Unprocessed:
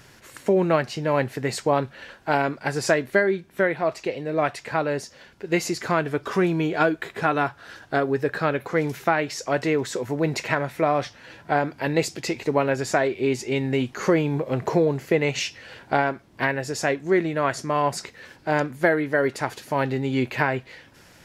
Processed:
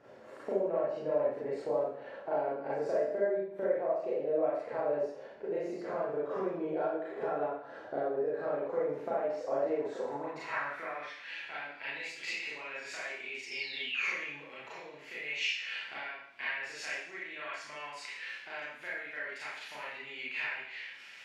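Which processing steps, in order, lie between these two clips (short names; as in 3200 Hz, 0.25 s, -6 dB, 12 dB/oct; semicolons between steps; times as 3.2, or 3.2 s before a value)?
painted sound fall, 13.46–14.2, 1700–5500 Hz -34 dBFS; compressor 6:1, threshold -33 dBFS, peak gain reduction 17.5 dB; Schroeder reverb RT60 0.67 s, combs from 28 ms, DRR -8 dB; band-pass sweep 550 Hz -> 2500 Hz, 9.71–11.35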